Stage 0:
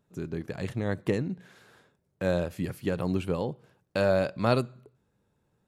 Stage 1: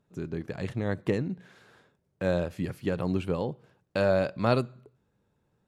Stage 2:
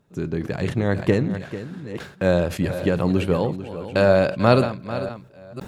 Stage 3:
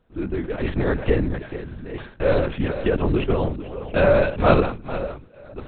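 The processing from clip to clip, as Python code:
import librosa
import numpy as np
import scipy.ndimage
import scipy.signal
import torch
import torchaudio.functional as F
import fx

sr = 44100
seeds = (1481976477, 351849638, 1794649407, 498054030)

y1 = fx.high_shelf(x, sr, hz=9500.0, db=-10.5)
y2 = fx.reverse_delay(y1, sr, ms=509, wet_db=-13.5)
y2 = y2 + 10.0 ** (-13.0 / 20.0) * np.pad(y2, (int(444 * sr / 1000.0), 0))[:len(y2)]
y2 = fx.sustainer(y2, sr, db_per_s=110.0)
y2 = F.gain(torch.from_numpy(y2), 8.0).numpy()
y3 = fx.lpc_vocoder(y2, sr, seeds[0], excitation='whisper', order=8)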